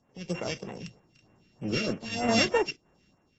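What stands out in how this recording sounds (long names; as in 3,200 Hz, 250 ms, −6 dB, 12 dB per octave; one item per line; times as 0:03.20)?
a buzz of ramps at a fixed pitch in blocks of 16 samples
sample-and-hold tremolo
phaser sweep stages 2, 3.2 Hz, lowest notch 780–4,600 Hz
AAC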